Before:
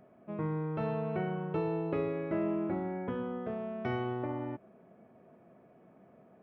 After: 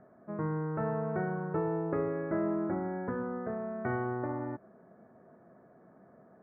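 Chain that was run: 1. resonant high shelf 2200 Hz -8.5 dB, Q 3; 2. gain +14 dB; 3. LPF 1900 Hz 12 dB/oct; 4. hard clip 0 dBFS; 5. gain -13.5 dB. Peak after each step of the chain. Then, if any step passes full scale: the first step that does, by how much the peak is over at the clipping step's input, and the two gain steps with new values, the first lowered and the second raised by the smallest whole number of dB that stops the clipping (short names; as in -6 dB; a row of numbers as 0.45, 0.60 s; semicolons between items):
-19.5, -5.5, -5.5, -5.5, -19.0 dBFS; no overload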